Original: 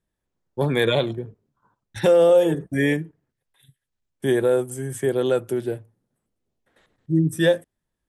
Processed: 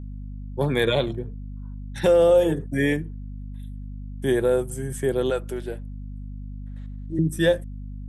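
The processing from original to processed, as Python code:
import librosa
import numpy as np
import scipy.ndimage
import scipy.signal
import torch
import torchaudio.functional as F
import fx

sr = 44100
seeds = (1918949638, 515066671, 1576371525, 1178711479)

y = fx.weighting(x, sr, curve='A', at=(5.3, 7.19))
y = fx.add_hum(y, sr, base_hz=50, snr_db=10)
y = F.gain(torch.from_numpy(y), -1.5).numpy()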